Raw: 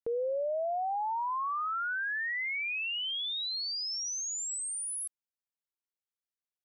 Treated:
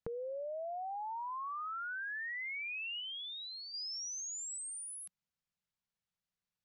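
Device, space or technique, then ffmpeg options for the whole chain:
jukebox: -filter_complex "[0:a]lowpass=5.9k,lowshelf=f=230:t=q:w=3:g=7,acompressor=threshold=-44dB:ratio=5,asettb=1/sr,asplit=3[a][b][c];[a]atrim=end=3.004[d];[b]atrim=start=3:end=3.74,asetpts=PTS-STARTPTS,afade=t=in:d=0.004:c=qsin,afade=t=out:st=0.736:d=0.004:c=qsin,lowpass=3.5k[e];[c]atrim=start=3.736[f];[d][e]acrossfade=d=0.004:c1=hsin:c2=qsin[g];[g][f]acrossfade=d=0.004:c1=qsin:c2=hsin,volume=3dB"

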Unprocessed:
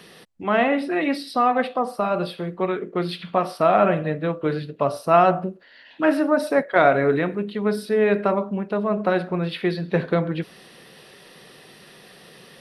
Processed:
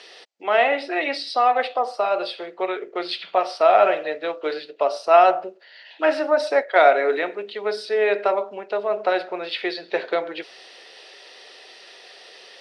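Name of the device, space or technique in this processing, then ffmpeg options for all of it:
phone speaker on a table: -filter_complex "[0:a]asettb=1/sr,asplit=3[a][b][c];[a]atrim=end=3.804[d];[b]atrim=start=3.8:end=4.54,asetpts=PTS-STARTPTS,afade=t=in:d=0.004:c=qsin,afade=t=out:st=0.736:d=0.004:c=qsin,equalizer=f=5.1k:t=o:w=0.85:g=5.5[e];[c]atrim=start=4.536[f];[d][e]acrossfade=d=0.004:c1=hsin:c2=qsin[g];[g][f]acrossfade=d=0.004:c1=qsin:c2=hsin,highpass=f=450:w=0.5412,highpass=f=450:w=1.3066,equalizer=f=510:t=q:w=4:g=-4,equalizer=f=1.1k:t=q:w=4:g=-8,equalizer=f=1.6k:t=q:w=4:g=-4,equalizer=f=4.8k:t=q:w=4:g=3,lowpass=f=7k:w=0.5412,lowpass=f=7k:w=1.3066,volume=4.5dB"

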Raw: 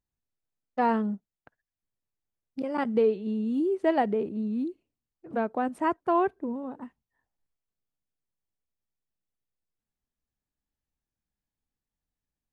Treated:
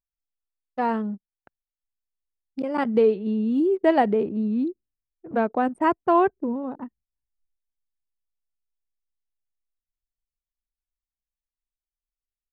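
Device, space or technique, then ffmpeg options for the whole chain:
voice memo with heavy noise removal: -af "anlmdn=0.0158,dynaudnorm=f=230:g=21:m=5.5dB"

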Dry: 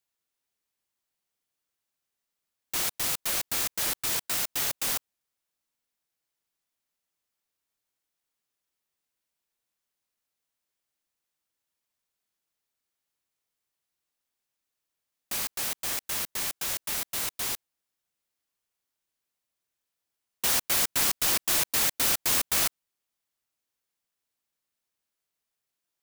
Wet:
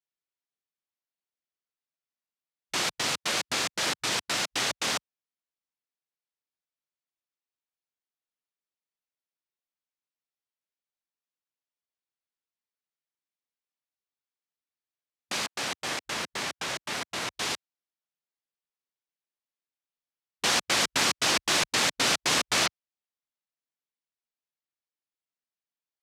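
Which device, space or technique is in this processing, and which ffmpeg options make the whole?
over-cleaned archive recording: -filter_complex "[0:a]highpass=130,lowpass=5.6k,afwtdn=0.00447,asettb=1/sr,asplit=3[a][b][c];[a]atrim=end=15.464[d];[b]atrim=start=15.46:end=17.34,asetpts=PTS-STARTPTS,afade=t=in:d=0.004:c=qsin,afade=t=out:st=1.876:d=0.004:c=qsin,adynamicequalizer=threshold=0.00282:dfrequency=2500:dqfactor=0.7:tfrequency=2500:tqfactor=0.7:attack=5:release=100:ratio=0.375:range=2:mode=cutabove:tftype=highshelf[e];[c]atrim=start=17.336[f];[d][e]acrossfade=d=0.004:c1=hsin:c2=qsin[g];[g][f]acrossfade=d=0.004:c1=qsin:c2=hsin,volume=6dB"

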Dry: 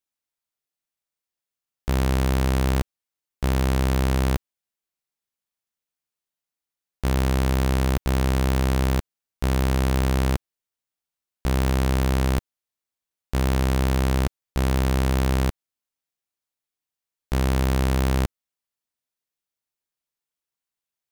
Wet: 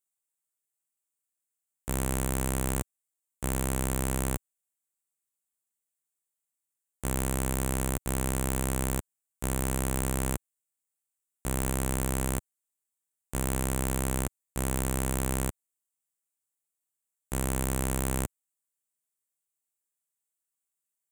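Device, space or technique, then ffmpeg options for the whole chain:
budget condenser microphone: -af "highpass=f=86:p=1,highshelf=f=6.3k:t=q:w=3:g=8.5,volume=-6.5dB"

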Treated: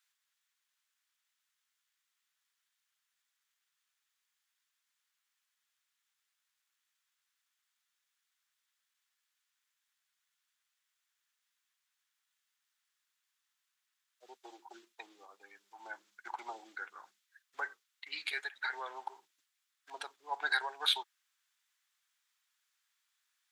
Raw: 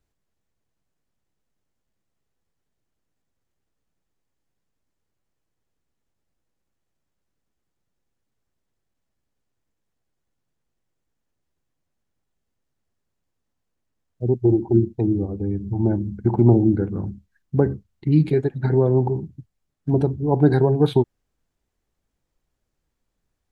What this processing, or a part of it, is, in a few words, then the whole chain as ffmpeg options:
headphones lying on a table: -af "highpass=f=1.3k:w=0.5412,highpass=f=1.3k:w=1.3066,equalizer=f=3.5k:t=o:w=0.3:g=4,volume=5dB"

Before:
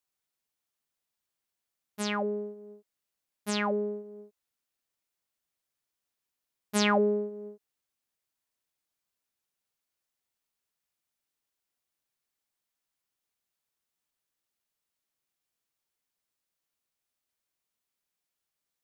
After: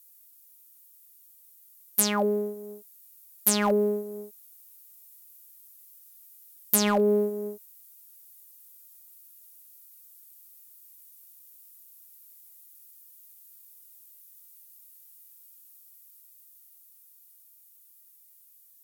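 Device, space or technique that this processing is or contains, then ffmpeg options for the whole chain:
FM broadcast chain: -filter_complex "[0:a]highpass=67,dynaudnorm=f=270:g=21:m=3dB,acrossover=split=1200|7200[a][b][c];[a]acompressor=threshold=-23dB:ratio=4[d];[b]acompressor=threshold=-40dB:ratio=4[e];[c]acompressor=threshold=-47dB:ratio=4[f];[d][e][f]amix=inputs=3:normalize=0,aemphasis=mode=production:type=50fm,alimiter=limit=-18.5dB:level=0:latency=1:release=183,asoftclip=type=hard:threshold=-21dB,lowpass=f=15k:w=0.5412,lowpass=f=15k:w=1.3066,aemphasis=mode=production:type=50fm,volume=6dB"

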